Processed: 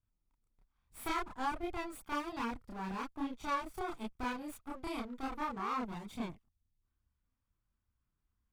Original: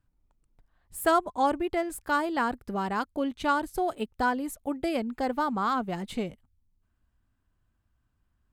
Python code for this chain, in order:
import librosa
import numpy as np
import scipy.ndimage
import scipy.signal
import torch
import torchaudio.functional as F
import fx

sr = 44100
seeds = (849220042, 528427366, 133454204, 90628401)

y = fx.lower_of_two(x, sr, delay_ms=0.87)
y = fx.chorus_voices(y, sr, voices=2, hz=1.2, base_ms=29, depth_ms=3.0, mix_pct=55)
y = F.gain(torch.from_numpy(y), -6.5).numpy()